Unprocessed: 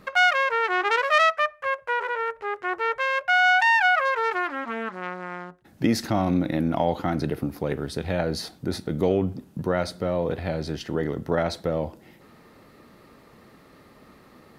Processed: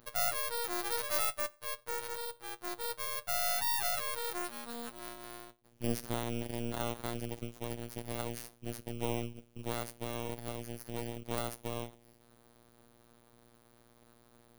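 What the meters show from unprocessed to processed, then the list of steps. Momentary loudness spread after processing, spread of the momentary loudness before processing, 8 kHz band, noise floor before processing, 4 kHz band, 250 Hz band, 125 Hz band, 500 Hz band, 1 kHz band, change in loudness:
13 LU, 12 LU, +3.0 dB, -53 dBFS, -9.5 dB, -14.5 dB, -11.5 dB, -14.0 dB, -16.0 dB, -12.5 dB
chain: bit-reversed sample order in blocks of 16 samples; robot voice 118 Hz; half-wave rectifier; trim -8.5 dB

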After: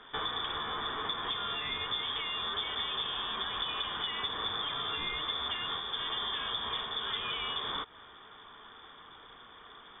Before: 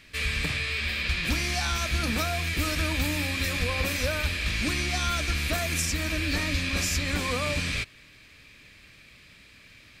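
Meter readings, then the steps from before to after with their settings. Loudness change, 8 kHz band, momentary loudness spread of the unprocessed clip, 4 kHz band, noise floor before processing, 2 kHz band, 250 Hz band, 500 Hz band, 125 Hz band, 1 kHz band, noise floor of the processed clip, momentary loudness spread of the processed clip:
-6.5 dB, under -40 dB, 1 LU, 0.0 dB, -53 dBFS, -11.0 dB, -17.5 dB, -10.0 dB, -22.5 dB, -1.0 dB, -53 dBFS, 18 LU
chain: compression 6:1, threshold -33 dBFS, peak gain reduction 11 dB; frequency inversion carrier 3.5 kHz; small resonant body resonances 450/1400 Hz, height 7 dB

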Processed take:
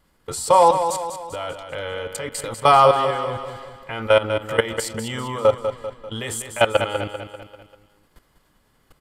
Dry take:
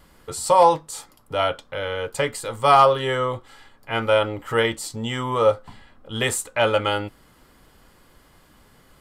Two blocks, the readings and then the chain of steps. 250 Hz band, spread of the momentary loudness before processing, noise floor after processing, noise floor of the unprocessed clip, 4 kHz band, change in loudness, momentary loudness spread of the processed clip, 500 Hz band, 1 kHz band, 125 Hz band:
-1.0 dB, 15 LU, -63 dBFS, -55 dBFS, -0.5 dB, +0.5 dB, 17 LU, +1.0 dB, +1.0 dB, -0.5 dB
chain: level held to a coarse grid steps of 17 dB; feedback delay 196 ms, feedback 48%, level -8.5 dB; trim +5 dB

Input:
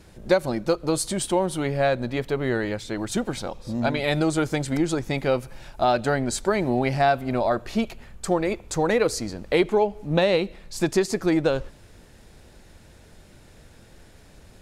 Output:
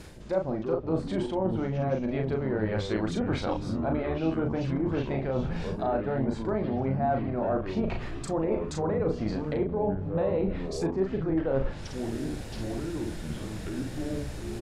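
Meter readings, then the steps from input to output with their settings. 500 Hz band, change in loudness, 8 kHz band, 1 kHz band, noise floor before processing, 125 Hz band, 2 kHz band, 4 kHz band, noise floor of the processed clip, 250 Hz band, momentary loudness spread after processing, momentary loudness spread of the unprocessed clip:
-5.5 dB, -5.5 dB, -15.0 dB, -7.5 dB, -51 dBFS, -1.0 dB, -11.0 dB, -11.0 dB, -38 dBFS, -3.0 dB, 7 LU, 7 LU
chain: low-pass that closes with the level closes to 1 kHz, closed at -20 dBFS; reverse; compression 10:1, threshold -35 dBFS, peak gain reduction 21 dB; reverse; doubling 37 ms -4 dB; ever faster or slower copies 204 ms, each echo -6 st, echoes 3, each echo -6 dB; trim +8 dB

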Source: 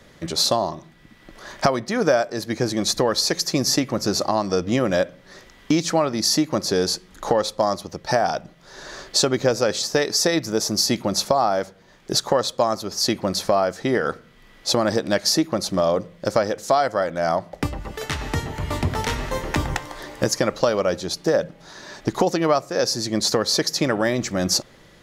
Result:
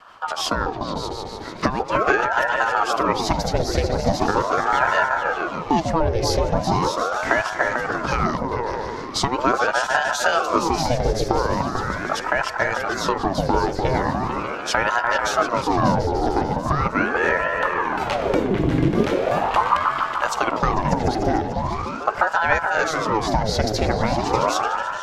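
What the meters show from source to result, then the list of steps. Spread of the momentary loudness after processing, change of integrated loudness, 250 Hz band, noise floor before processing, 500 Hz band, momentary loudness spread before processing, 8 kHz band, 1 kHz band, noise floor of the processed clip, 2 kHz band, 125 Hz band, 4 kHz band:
6 LU, +0.5 dB, -0.5 dB, -50 dBFS, -1.0 dB, 9 LU, -8.0 dB, +6.0 dB, -31 dBFS, +7.5 dB, +3.0 dB, -6.0 dB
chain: tone controls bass +4 dB, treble -9 dB; in parallel at 0 dB: compression, threshold -26 dBFS, peak gain reduction 13.5 dB; on the sum: vibrato 0.55 Hz 9.1 cents; rotary cabinet horn 6 Hz, later 0.9 Hz, at 6.63 s; on a send: delay with an opening low-pass 148 ms, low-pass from 200 Hz, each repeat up 2 oct, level 0 dB; on the sum: ring modulator with a swept carrier 700 Hz, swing 70%, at 0.4 Hz

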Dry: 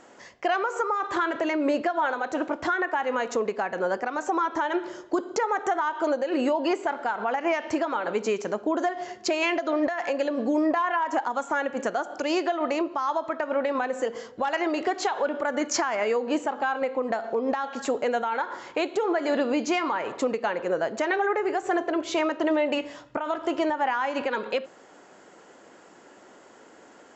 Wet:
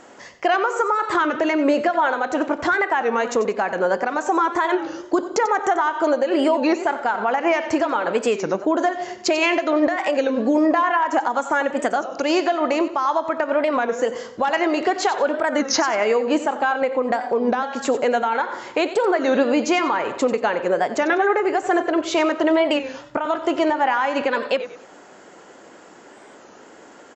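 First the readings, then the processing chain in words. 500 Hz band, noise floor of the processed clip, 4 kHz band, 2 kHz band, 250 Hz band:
+6.0 dB, -46 dBFS, +6.5 dB, +6.0 dB, +6.0 dB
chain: feedback delay 92 ms, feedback 31%, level -13 dB; warped record 33 1/3 rpm, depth 160 cents; trim +6 dB

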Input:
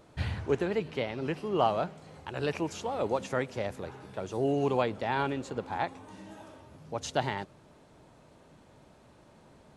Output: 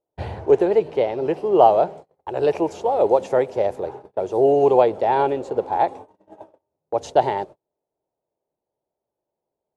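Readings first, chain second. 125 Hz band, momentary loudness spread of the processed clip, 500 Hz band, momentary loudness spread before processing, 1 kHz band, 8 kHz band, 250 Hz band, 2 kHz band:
+1.0 dB, 14 LU, +14.0 dB, 19 LU, +12.5 dB, no reading, +7.0 dB, +1.0 dB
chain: high-order bell 560 Hz +13 dB; gate -36 dBFS, range -36 dB; tape noise reduction on one side only decoder only; trim +1 dB

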